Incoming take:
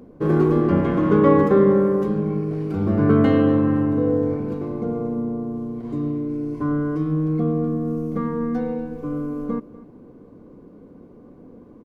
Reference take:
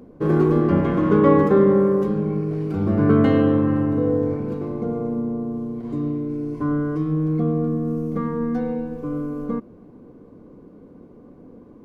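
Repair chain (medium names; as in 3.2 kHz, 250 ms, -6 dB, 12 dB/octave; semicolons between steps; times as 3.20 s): inverse comb 241 ms -19 dB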